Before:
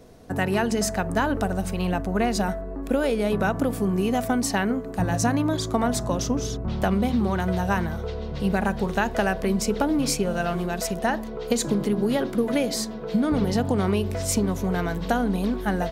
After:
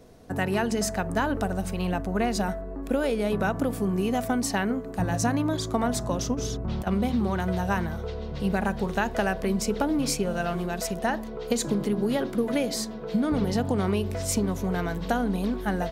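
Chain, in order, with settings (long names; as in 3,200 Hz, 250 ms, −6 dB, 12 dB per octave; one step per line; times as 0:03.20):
0:06.34–0:06.87: compressor whose output falls as the input rises −26 dBFS, ratio −0.5
level −2.5 dB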